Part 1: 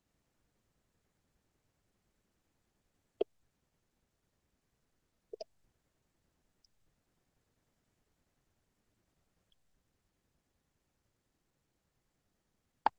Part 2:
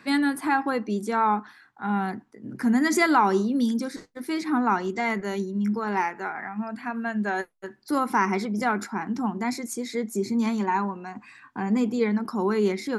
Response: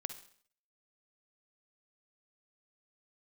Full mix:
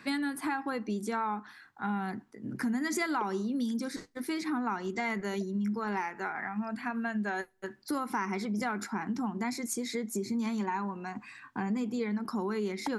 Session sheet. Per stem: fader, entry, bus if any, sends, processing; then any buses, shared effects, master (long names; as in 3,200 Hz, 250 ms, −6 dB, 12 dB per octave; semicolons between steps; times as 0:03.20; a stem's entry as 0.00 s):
−8.5 dB, 0.00 s, no send, no processing
0.0 dB, 0.00 s, send −24 dB, downward compressor 4 to 1, threshold −29 dBFS, peak gain reduction 11.5 dB; parametric band 550 Hz −3 dB 2.3 octaves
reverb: on, RT60 0.55 s, pre-delay 45 ms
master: no processing